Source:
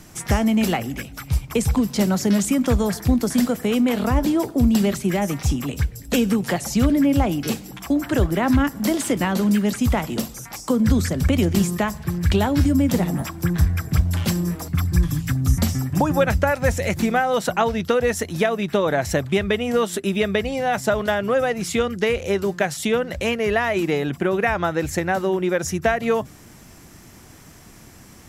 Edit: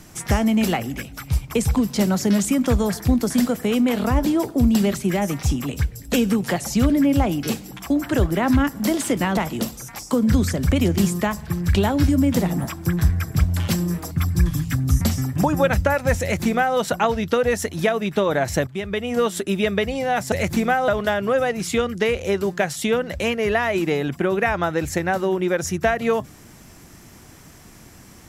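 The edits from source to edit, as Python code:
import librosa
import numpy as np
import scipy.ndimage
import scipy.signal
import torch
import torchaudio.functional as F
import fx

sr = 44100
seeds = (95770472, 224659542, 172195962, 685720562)

y = fx.edit(x, sr, fx.cut(start_s=9.37, length_s=0.57),
    fx.duplicate(start_s=16.78, length_s=0.56, to_s=20.89),
    fx.fade_in_from(start_s=19.24, length_s=0.55, floor_db=-12.5), tone=tone)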